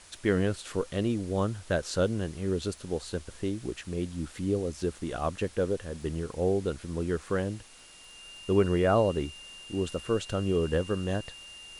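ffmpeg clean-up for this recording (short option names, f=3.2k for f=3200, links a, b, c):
-af "adeclick=t=4,bandreject=f=2.8k:w=30,afwtdn=0.0028"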